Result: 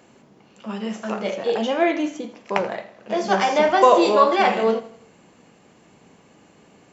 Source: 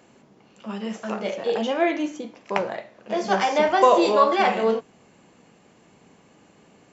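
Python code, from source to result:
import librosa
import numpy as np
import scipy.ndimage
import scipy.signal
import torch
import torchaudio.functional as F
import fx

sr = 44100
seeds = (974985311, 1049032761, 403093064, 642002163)

y = fx.echo_feedback(x, sr, ms=82, feedback_pct=47, wet_db=-16)
y = y * 10.0 ** (2.0 / 20.0)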